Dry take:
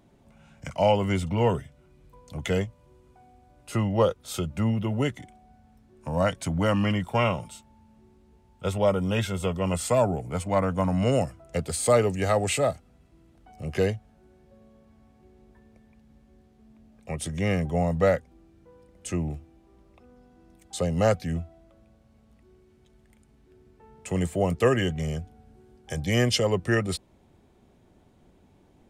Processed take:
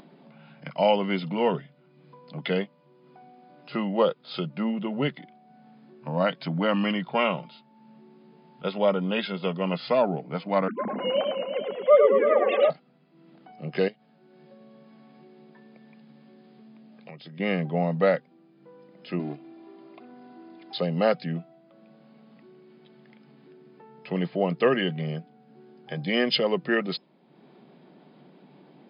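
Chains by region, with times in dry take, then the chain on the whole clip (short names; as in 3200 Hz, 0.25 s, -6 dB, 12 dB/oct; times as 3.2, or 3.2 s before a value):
10.68–12.7 sine-wave speech + notches 60/120/180/240/300 Hz + warbling echo 0.109 s, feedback 77%, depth 122 cents, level -4.5 dB
13.88–17.4 compressor, threshold -40 dBFS + bell 8300 Hz +5.5 dB 3 oct
19.19–20.78 G.711 law mismatch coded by mu + comb 2.9 ms, depth 72%
whole clip: FFT band-pass 130–5100 Hz; dynamic EQ 3700 Hz, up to +3 dB, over -41 dBFS, Q 0.76; upward compressor, threshold -44 dBFS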